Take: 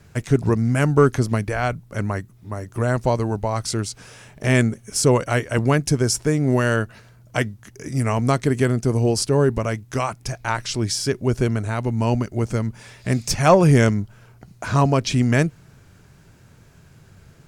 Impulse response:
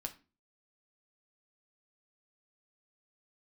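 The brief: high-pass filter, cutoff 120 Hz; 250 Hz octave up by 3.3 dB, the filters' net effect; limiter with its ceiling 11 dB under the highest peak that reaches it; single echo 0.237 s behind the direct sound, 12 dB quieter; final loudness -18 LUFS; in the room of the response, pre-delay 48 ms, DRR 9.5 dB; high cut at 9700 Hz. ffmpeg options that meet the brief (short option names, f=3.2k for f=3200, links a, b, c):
-filter_complex "[0:a]highpass=120,lowpass=9.7k,equalizer=f=250:t=o:g=4.5,alimiter=limit=-12dB:level=0:latency=1,aecho=1:1:237:0.251,asplit=2[a][b];[1:a]atrim=start_sample=2205,adelay=48[c];[b][c]afir=irnorm=-1:irlink=0,volume=-7.5dB[d];[a][d]amix=inputs=2:normalize=0,volume=5dB"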